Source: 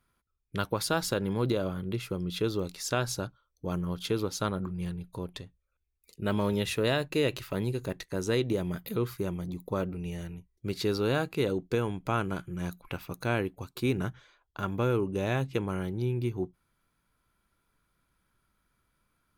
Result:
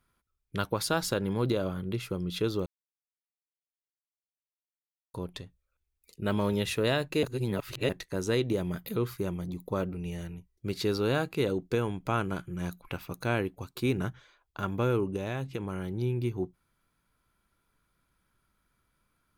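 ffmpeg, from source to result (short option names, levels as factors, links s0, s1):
-filter_complex "[0:a]asettb=1/sr,asplit=3[s0][s1][s2];[s0]atrim=end=15.164[s3];[s1]atrim=start=15.16:end=15.91,asetpts=PTS-STARTPTS,afade=t=in:d=0.004:c=qsin,afade=t=out:st=0.746:d=0.004:c=qsin,acompressor=threshold=0.0316:ratio=4:attack=3.2:release=140:knee=1:detection=peak[s4];[s2]atrim=start=15.906[s5];[s3][s4]acrossfade=d=0.004:c1=hsin:c2=qsin[s6];[s6][s5]acrossfade=d=0.004:c1=qsin:c2=hsin,asplit=5[s7][s8][s9][s10][s11];[s7]atrim=end=2.66,asetpts=PTS-STARTPTS,afade=t=out:st=2.656:d=0.004:c=hsin[s12];[s8]atrim=start=2.66:end=5.14,asetpts=PTS-STARTPTS,volume=0[s13];[s9]atrim=start=5.14:end=7.232,asetpts=PTS-STARTPTS,afade=t=in:d=0.004:c=hsin[s14];[s10]atrim=start=7.228:end=7.892,asetpts=PTS-STARTPTS,areverse[s15];[s11]atrim=start=7.888[s16];[s12][s13][s14]concat=n=3:v=0:a=1[s17];[s17][s15]acrossfade=d=0.004:c1=hsin:c2=hsin[s18];[s18][s16]acrossfade=d=0.004:c1=hsin:c2=hsin"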